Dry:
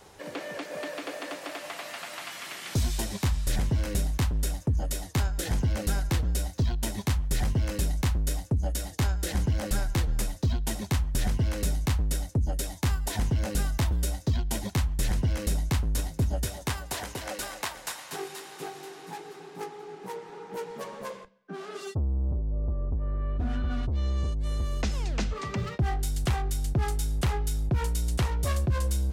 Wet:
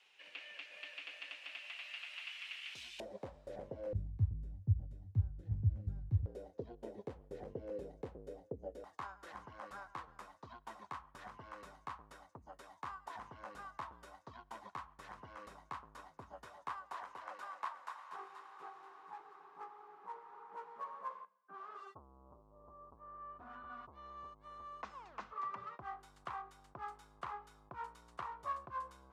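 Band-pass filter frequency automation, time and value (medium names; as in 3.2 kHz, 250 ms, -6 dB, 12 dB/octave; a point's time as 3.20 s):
band-pass filter, Q 5.2
2.7 kHz
from 3.00 s 550 Hz
from 3.93 s 100 Hz
from 6.26 s 470 Hz
from 8.84 s 1.1 kHz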